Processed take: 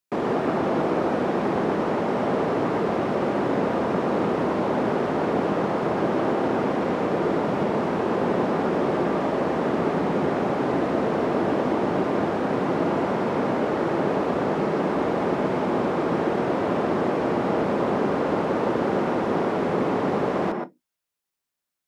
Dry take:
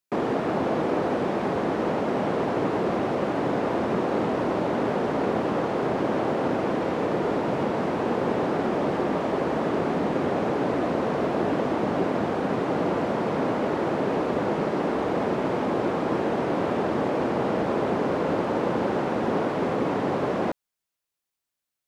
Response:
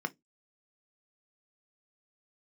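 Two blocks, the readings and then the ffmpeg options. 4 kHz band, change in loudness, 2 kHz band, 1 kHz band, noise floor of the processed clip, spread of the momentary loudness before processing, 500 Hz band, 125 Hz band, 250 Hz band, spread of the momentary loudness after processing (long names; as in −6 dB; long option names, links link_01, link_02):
+0.5 dB, +1.5 dB, +1.5 dB, +2.0 dB, −84 dBFS, 1 LU, +1.5 dB, +1.5 dB, +2.0 dB, 1 LU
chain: -filter_complex "[0:a]asplit=2[link_01][link_02];[1:a]atrim=start_sample=2205,adelay=121[link_03];[link_02][link_03]afir=irnorm=-1:irlink=0,volume=-8dB[link_04];[link_01][link_04]amix=inputs=2:normalize=0"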